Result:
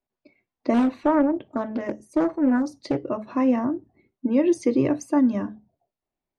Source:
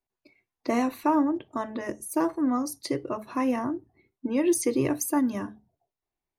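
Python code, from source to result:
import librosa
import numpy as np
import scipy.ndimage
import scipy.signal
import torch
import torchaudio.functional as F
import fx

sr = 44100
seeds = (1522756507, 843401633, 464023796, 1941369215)

y = scipy.ndimage.gaussian_filter1d(x, 1.5, mode='constant')
y = fx.small_body(y, sr, hz=(220.0, 560.0), ring_ms=20, db=7)
y = fx.doppler_dist(y, sr, depth_ms=0.44, at=(0.74, 3.04))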